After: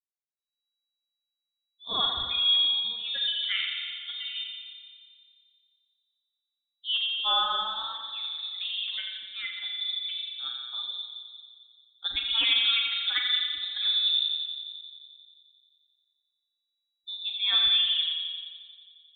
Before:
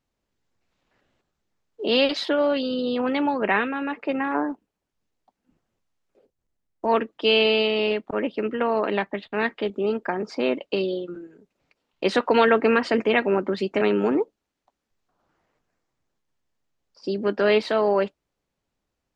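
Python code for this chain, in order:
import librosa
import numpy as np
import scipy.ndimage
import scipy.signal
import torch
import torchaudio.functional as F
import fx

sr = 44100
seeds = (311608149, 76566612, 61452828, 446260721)

y = fx.bin_expand(x, sr, power=2.0)
y = fx.echo_filtered(y, sr, ms=88, feedback_pct=79, hz=1700.0, wet_db=-5.5)
y = fx.rev_spring(y, sr, rt60_s=1.6, pass_ms=(38,), chirp_ms=80, drr_db=1.5)
y = fx.freq_invert(y, sr, carrier_hz=3900)
y = y * librosa.db_to_amplitude(-6.0)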